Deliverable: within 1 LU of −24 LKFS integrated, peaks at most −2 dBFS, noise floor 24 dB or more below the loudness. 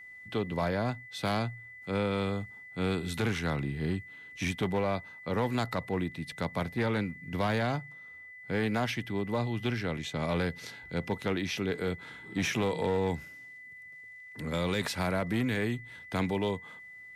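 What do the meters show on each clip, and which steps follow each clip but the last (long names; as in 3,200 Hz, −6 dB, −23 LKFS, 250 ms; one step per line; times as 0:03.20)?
share of clipped samples 1.4%; peaks flattened at −23.0 dBFS; interfering tone 2,000 Hz; level of the tone −46 dBFS; integrated loudness −32.5 LKFS; sample peak −23.0 dBFS; target loudness −24.0 LKFS
→ clipped peaks rebuilt −23 dBFS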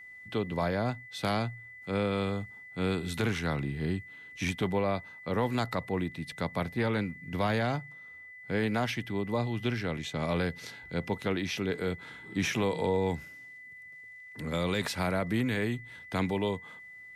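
share of clipped samples 0.0%; interfering tone 2,000 Hz; level of the tone −46 dBFS
→ notch filter 2,000 Hz, Q 30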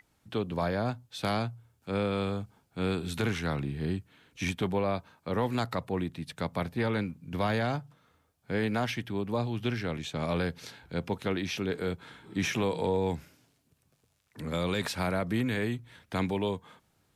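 interfering tone none found; integrated loudness −32.5 LKFS; sample peak −14.0 dBFS; target loudness −24.0 LKFS
→ level +8.5 dB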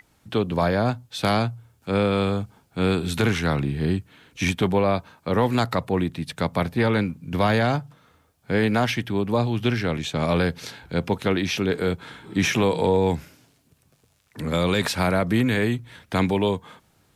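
integrated loudness −24.0 LKFS; sample peak −5.5 dBFS; background noise floor −63 dBFS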